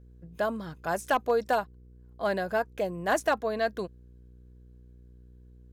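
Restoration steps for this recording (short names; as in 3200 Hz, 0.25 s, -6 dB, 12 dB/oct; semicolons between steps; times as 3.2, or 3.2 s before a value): clip repair -17 dBFS; de-hum 61.1 Hz, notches 8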